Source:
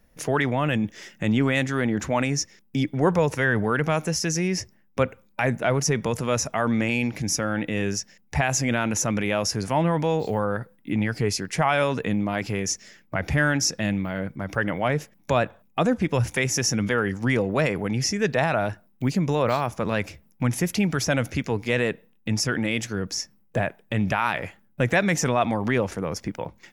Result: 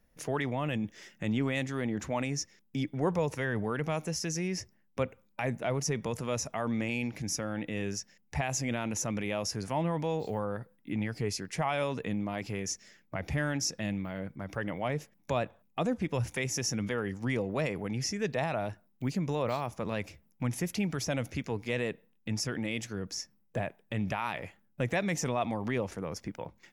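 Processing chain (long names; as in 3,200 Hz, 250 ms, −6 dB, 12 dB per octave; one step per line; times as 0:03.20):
dynamic equaliser 1,500 Hz, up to −6 dB, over −40 dBFS, Q 3.1
level −8.5 dB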